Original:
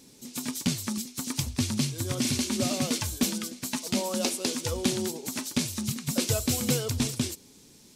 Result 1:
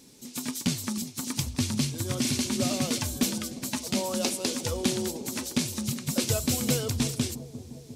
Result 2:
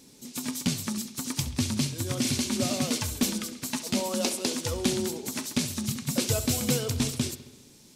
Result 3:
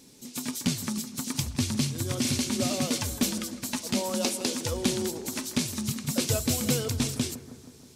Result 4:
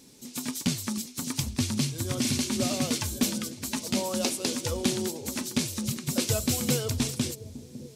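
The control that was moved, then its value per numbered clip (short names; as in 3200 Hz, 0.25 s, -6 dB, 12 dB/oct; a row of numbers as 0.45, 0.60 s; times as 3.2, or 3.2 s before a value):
analogue delay, time: 353, 67, 159, 554 ms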